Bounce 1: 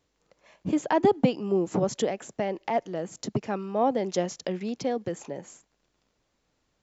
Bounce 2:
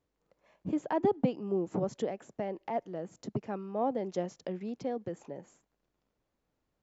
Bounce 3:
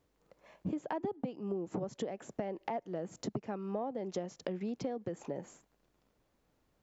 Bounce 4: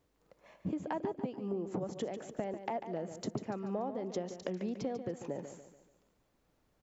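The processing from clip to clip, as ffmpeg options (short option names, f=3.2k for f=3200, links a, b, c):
-af "highshelf=f=2.1k:g=-10.5,volume=-6dB"
-af "acompressor=threshold=-40dB:ratio=10,volume=6.5dB"
-af "aecho=1:1:144|288|432|576|720:0.316|0.136|0.0585|0.0251|0.0108"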